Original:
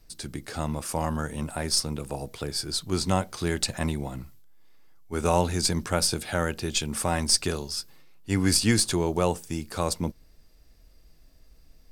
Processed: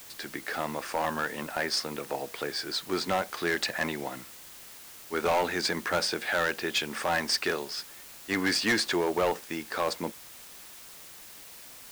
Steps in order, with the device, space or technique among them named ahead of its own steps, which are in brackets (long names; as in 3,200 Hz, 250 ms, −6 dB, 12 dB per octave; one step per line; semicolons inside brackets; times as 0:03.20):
drive-through speaker (band-pass filter 360–3,900 Hz; parametric band 1,800 Hz +8 dB 0.57 octaves; hard clipping −23 dBFS, distortion −9 dB; white noise bed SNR 16 dB)
level +2.5 dB